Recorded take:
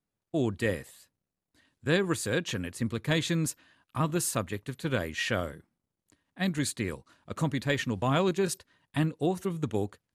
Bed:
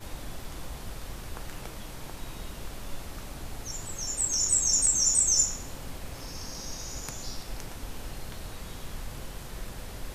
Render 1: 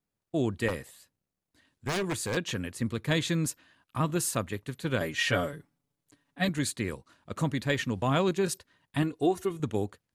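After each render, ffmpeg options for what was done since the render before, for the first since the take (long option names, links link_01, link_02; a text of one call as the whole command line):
ffmpeg -i in.wav -filter_complex "[0:a]asettb=1/sr,asplit=3[link_01][link_02][link_03];[link_01]atrim=end=0.684[link_04];[link_02]atrim=start=0.68:end=2.37,asetpts=PTS-STARTPTS,afade=type=in:duration=0.004:curve=qsin,afade=type=out:start_time=1.686:duration=0.004:curve=qsin,aeval=exprs='0.0631*(abs(mod(val(0)/0.0631+3,4)-2)-1)':channel_layout=same[link_05];[link_03]atrim=start=2.366[link_06];[link_04][link_05]acrossfade=duration=0.004:curve1=hsin:curve2=qsin[link_07];[link_07][link_06]acrossfade=duration=0.004:curve1=qsin:curve2=hsin,asettb=1/sr,asplit=3[link_08][link_09][link_10];[link_08]atrim=end=5.004[link_11];[link_09]atrim=start=5:end=6.49,asetpts=PTS-STARTPTS,afade=type=in:duration=0.004:curve=qsin,afade=type=out:start_time=1.486:duration=0.004:curve=qsin,aecho=1:1:7:0.97,atrim=end_sample=65709[link_12];[link_10]atrim=start=6.486[link_13];[link_11][link_12]acrossfade=duration=0.004:curve1=hsin:curve2=qsin[link_14];[link_14][link_13]acrossfade=duration=0.004:curve1=qsin:curve2=hsin,asettb=1/sr,asplit=3[link_15][link_16][link_17];[link_15]atrim=end=9.024[link_18];[link_16]atrim=start=9.02:end=9.6,asetpts=PTS-STARTPTS,afade=type=in:duration=0.004:curve=qsin,afade=type=out:start_time=0.576:duration=0.004:curve=qsin,aecho=1:1:2.8:0.6,atrim=end_sample=25578[link_19];[link_17]atrim=start=9.596[link_20];[link_18][link_19]acrossfade=duration=0.004:curve1=hsin:curve2=qsin[link_21];[link_21][link_20]acrossfade=duration=0.004:curve1=qsin:curve2=hsin" out.wav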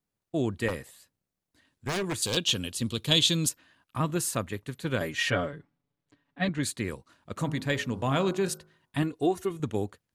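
ffmpeg -i in.wav -filter_complex "[0:a]asettb=1/sr,asplit=3[link_01][link_02][link_03];[link_01]atrim=end=2.224[link_04];[link_02]atrim=start=2.22:end=3.49,asetpts=PTS-STARTPTS,afade=type=in:duration=0.004:curve=qsin,afade=type=out:start_time=1.266:duration=0.004:curve=qsin,highshelf=frequency=2500:width_type=q:width=3:gain=7.5[link_05];[link_03]atrim=start=3.486[link_06];[link_04][link_05]acrossfade=duration=0.004:curve1=hsin:curve2=qsin[link_07];[link_07][link_06]acrossfade=duration=0.004:curve1=qsin:curve2=hsin,asettb=1/sr,asplit=3[link_08][link_09][link_10];[link_08]atrim=end=5.304[link_11];[link_09]atrim=start=5.3:end=6.63,asetpts=PTS-STARTPTS,afade=type=in:duration=0.004:curve=qsin,afade=type=out:start_time=1.326:duration=0.004:curve=qsin,lowpass=3700[link_12];[link_10]atrim=start=6.626[link_13];[link_11][link_12]acrossfade=duration=0.004:curve1=hsin:curve2=qsin[link_14];[link_14][link_13]acrossfade=duration=0.004:curve1=qsin:curve2=hsin,asettb=1/sr,asplit=3[link_15][link_16][link_17];[link_15]atrim=end=7.384[link_18];[link_16]atrim=start=7.38:end=8.98,asetpts=PTS-STARTPTS,afade=type=in:duration=0.004:curve=qsin,afade=type=out:start_time=1.596:duration=0.004:curve=qsin,bandreject=frequency=52.44:width_type=h:width=4,bandreject=frequency=104.88:width_type=h:width=4,bandreject=frequency=157.32:width_type=h:width=4,bandreject=frequency=209.76:width_type=h:width=4,bandreject=frequency=262.2:width_type=h:width=4,bandreject=frequency=314.64:width_type=h:width=4,bandreject=frequency=367.08:width_type=h:width=4,bandreject=frequency=419.52:width_type=h:width=4,bandreject=frequency=471.96:width_type=h:width=4,bandreject=frequency=524.4:width_type=h:width=4,bandreject=frequency=576.84:width_type=h:width=4,bandreject=frequency=629.28:width_type=h:width=4,bandreject=frequency=681.72:width_type=h:width=4,bandreject=frequency=734.16:width_type=h:width=4,bandreject=frequency=786.6:width_type=h:width=4,bandreject=frequency=839.04:width_type=h:width=4,bandreject=frequency=891.48:width_type=h:width=4,bandreject=frequency=943.92:width_type=h:width=4,bandreject=frequency=996.36:width_type=h:width=4,bandreject=frequency=1048.8:width_type=h:width=4,bandreject=frequency=1101.24:width_type=h:width=4,bandreject=frequency=1153.68:width_type=h:width=4,bandreject=frequency=1206.12:width_type=h:width=4,bandreject=frequency=1258.56:width_type=h:width=4,bandreject=frequency=1311:width_type=h:width=4,bandreject=frequency=1363.44:width_type=h:width=4,bandreject=frequency=1415.88:width_type=h:width=4,bandreject=frequency=1468.32:width_type=h:width=4,bandreject=frequency=1520.76:width_type=h:width=4[link_19];[link_17]atrim=start=8.976[link_20];[link_18][link_19]acrossfade=duration=0.004:curve1=hsin:curve2=qsin[link_21];[link_21][link_20]acrossfade=duration=0.004:curve1=qsin:curve2=hsin" out.wav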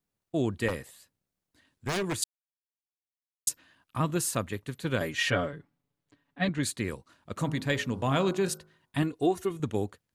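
ffmpeg -i in.wav -filter_complex "[0:a]asplit=3[link_01][link_02][link_03];[link_01]atrim=end=2.24,asetpts=PTS-STARTPTS,afade=type=out:start_time=2.236:duration=0.004:curve=hsin[link_04];[link_02]atrim=start=2.24:end=3.47,asetpts=PTS-STARTPTS,volume=0[link_05];[link_03]atrim=start=3.47,asetpts=PTS-STARTPTS,afade=type=in:duration=0.004:curve=hsin[link_06];[link_04][link_05][link_06]concat=n=3:v=0:a=1" out.wav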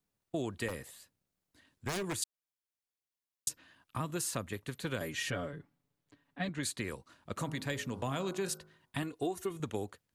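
ffmpeg -i in.wav -filter_complex "[0:a]acrossover=split=450|6300[link_01][link_02][link_03];[link_01]acompressor=threshold=-38dB:ratio=4[link_04];[link_02]acompressor=threshold=-38dB:ratio=4[link_05];[link_03]acompressor=threshold=-38dB:ratio=4[link_06];[link_04][link_05][link_06]amix=inputs=3:normalize=0" out.wav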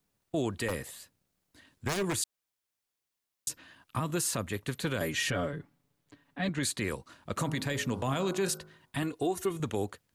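ffmpeg -i in.wav -af "acontrast=71,alimiter=limit=-21.5dB:level=0:latency=1:release=14" out.wav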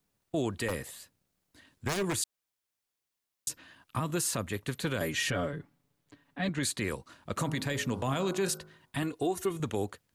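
ffmpeg -i in.wav -af anull out.wav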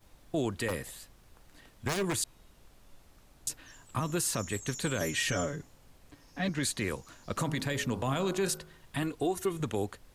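ffmpeg -i in.wav -i bed.wav -filter_complex "[1:a]volume=-19.5dB[link_01];[0:a][link_01]amix=inputs=2:normalize=0" out.wav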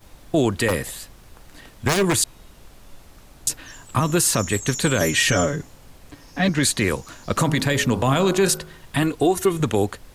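ffmpeg -i in.wav -af "volume=12dB" out.wav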